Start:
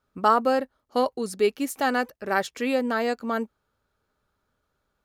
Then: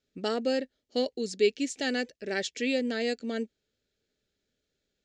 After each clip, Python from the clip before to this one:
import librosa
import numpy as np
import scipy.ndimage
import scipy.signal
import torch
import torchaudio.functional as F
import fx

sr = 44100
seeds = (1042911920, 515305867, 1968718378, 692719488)

y = fx.curve_eq(x, sr, hz=(100.0, 240.0, 440.0, 680.0, 1100.0, 1800.0, 3700.0, 7400.0, 12000.0), db=(0, 6, 7, -1, -18, 6, 12, 11, -25))
y = F.gain(torch.from_numpy(y), -9.0).numpy()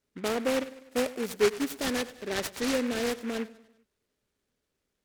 y = fx.echo_feedback(x, sr, ms=99, feedback_pct=50, wet_db=-17)
y = fx.noise_mod_delay(y, sr, seeds[0], noise_hz=1600.0, depth_ms=0.099)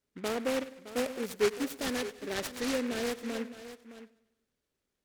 y = x + 10.0 ** (-13.5 / 20.0) * np.pad(x, (int(615 * sr / 1000.0), 0))[:len(x)]
y = F.gain(torch.from_numpy(y), -3.5).numpy()